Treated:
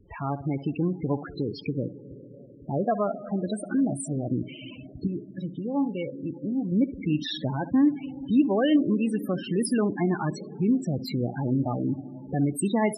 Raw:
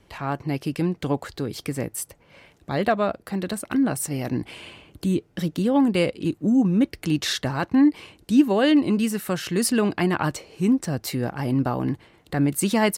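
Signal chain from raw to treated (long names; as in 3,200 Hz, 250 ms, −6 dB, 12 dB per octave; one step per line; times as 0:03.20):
in parallel at +2.5 dB: downward compressor 20 to 1, threshold −29 dBFS, peak gain reduction 19.5 dB
0:01.73–0:02.91: on the sum: low-pass filter 1,200 Hz 12 dB per octave
0:05.07–0:06.72: tuned comb filter 140 Hz, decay 0.4 s, harmonics all, mix 60%
on a send: flutter between parallel walls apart 11.2 metres, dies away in 0.29 s
on the sum: comb and all-pass reverb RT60 4.5 s, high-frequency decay 0.55×, pre-delay 120 ms, DRR 14 dB
spectral peaks only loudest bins 16
level −5.5 dB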